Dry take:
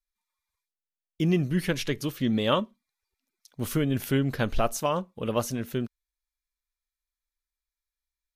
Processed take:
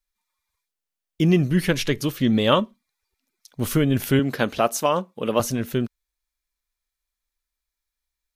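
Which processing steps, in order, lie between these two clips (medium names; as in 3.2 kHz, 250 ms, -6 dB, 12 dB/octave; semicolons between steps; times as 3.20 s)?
4.19–5.40 s: high-pass 190 Hz 12 dB/octave; trim +6 dB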